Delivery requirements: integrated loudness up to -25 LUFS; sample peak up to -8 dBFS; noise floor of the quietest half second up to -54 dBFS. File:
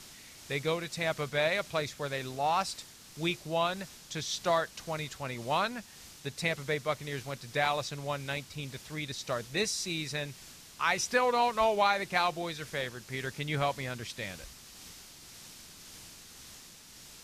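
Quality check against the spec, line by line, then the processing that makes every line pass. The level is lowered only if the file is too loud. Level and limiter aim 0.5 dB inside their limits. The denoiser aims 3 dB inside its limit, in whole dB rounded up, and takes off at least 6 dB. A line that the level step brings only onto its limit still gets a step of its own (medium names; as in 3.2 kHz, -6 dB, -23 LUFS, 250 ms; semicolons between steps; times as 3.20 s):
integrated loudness -32.5 LUFS: pass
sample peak -12.0 dBFS: pass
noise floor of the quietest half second -52 dBFS: fail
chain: noise reduction 6 dB, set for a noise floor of -52 dBFS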